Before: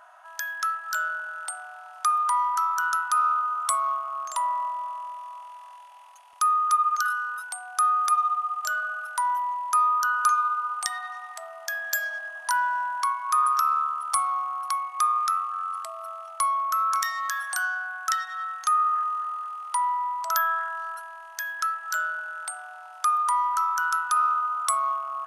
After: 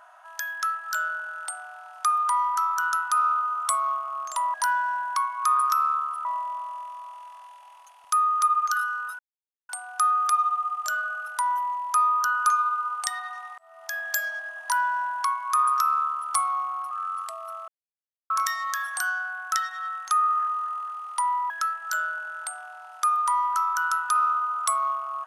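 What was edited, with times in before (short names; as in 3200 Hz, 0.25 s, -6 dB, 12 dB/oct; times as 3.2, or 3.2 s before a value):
7.48 insert silence 0.50 s
11.37–11.77 fade in linear
12.41–14.12 copy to 4.54
14.7–15.47 cut
16.24–16.86 mute
20.06–21.51 cut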